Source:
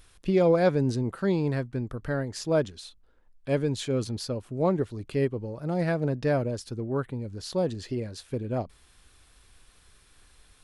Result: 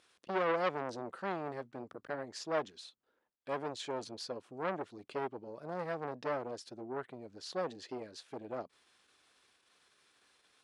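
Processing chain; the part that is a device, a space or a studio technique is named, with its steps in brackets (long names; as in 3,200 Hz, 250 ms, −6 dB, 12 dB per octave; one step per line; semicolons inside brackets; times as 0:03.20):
public-address speaker with an overloaded transformer (saturating transformer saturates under 1,300 Hz; band-pass filter 300–6,900 Hz)
level −5.5 dB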